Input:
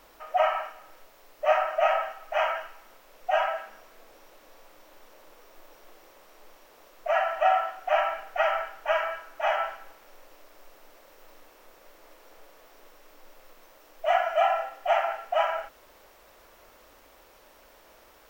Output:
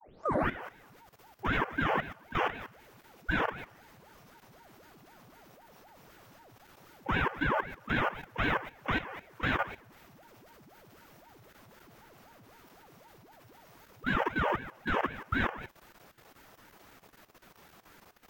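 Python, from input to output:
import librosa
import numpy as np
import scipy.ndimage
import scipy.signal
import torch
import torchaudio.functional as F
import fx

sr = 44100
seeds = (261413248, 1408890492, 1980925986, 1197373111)

y = fx.tape_start_head(x, sr, length_s=0.58)
y = fx.level_steps(y, sr, step_db=14)
y = fx.ring_lfo(y, sr, carrier_hz=520.0, swing_pct=80, hz=3.9)
y = y * librosa.db_to_amplitude(2.5)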